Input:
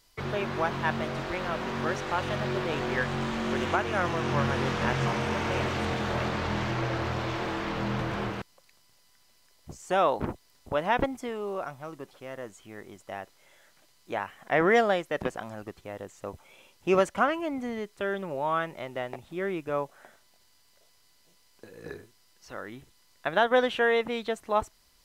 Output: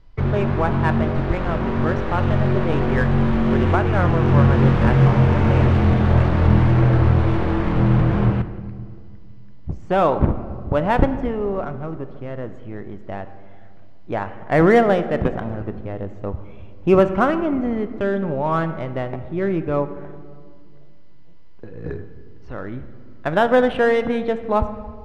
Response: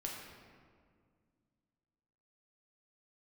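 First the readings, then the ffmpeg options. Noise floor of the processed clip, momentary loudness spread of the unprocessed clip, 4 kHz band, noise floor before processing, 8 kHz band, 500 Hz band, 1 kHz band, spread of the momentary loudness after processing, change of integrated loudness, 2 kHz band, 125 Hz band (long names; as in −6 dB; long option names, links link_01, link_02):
−35 dBFS, 17 LU, −0.5 dB, −63 dBFS, can't be measured, +8.5 dB, +6.0 dB, 18 LU, +10.0 dB, +3.5 dB, +17.5 dB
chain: -filter_complex "[0:a]aemphasis=mode=reproduction:type=riaa,adynamicsmooth=sensitivity=7.5:basefreq=3900,asplit=2[link_01][link_02];[1:a]atrim=start_sample=2205[link_03];[link_02][link_03]afir=irnorm=-1:irlink=0,volume=-6dB[link_04];[link_01][link_04]amix=inputs=2:normalize=0,volume=3dB"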